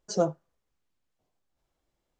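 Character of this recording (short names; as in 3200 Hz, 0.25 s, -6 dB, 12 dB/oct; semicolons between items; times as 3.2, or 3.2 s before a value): noise floor -81 dBFS; spectral tilt -5.0 dB/oct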